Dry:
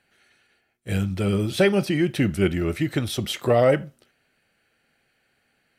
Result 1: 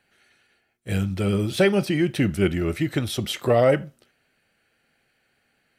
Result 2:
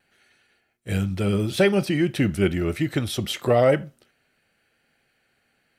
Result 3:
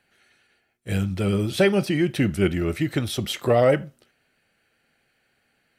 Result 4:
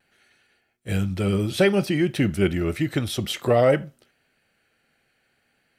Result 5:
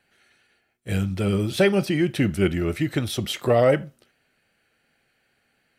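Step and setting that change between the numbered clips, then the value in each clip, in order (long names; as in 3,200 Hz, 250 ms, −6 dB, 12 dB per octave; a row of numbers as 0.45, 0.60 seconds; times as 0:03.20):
pitch vibrato, speed: 4.7, 0.88, 7.6, 0.56, 2.7 Hertz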